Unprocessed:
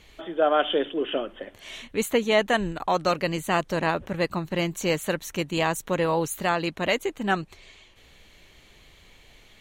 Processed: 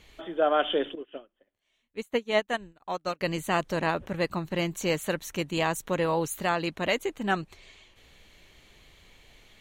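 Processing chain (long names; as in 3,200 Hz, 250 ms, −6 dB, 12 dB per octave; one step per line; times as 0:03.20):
0:00.95–0:03.21: expander for the loud parts 2.5 to 1, over −38 dBFS
level −2.5 dB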